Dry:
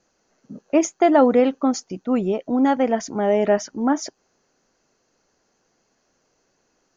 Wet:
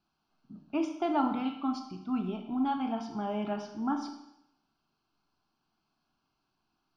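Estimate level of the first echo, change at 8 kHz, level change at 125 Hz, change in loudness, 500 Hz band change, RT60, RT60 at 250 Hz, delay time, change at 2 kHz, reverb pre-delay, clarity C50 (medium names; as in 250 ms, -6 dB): no echo, no reading, -9.0 dB, -13.0 dB, -19.0 dB, 0.80 s, 0.80 s, no echo, -14.5 dB, 18 ms, 7.5 dB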